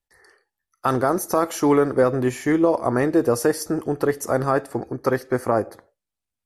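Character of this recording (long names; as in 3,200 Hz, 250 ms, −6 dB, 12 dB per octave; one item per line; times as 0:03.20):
background noise floor −86 dBFS
spectral slope −4.0 dB per octave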